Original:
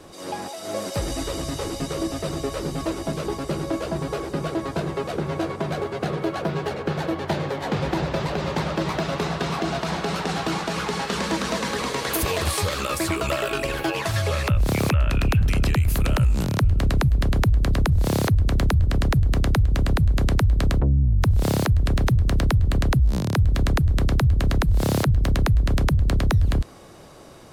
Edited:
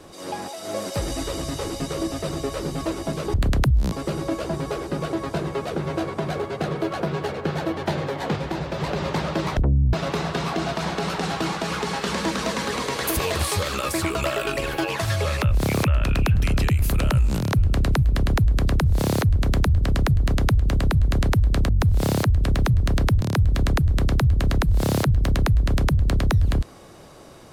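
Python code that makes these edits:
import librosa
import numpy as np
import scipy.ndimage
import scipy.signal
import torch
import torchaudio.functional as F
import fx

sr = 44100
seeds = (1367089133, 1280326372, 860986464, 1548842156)

y = fx.edit(x, sr, fx.clip_gain(start_s=7.78, length_s=0.44, db=-3.5),
    fx.move(start_s=20.75, length_s=0.36, to_s=8.99),
    fx.move(start_s=22.63, length_s=0.58, to_s=3.34), tone=tone)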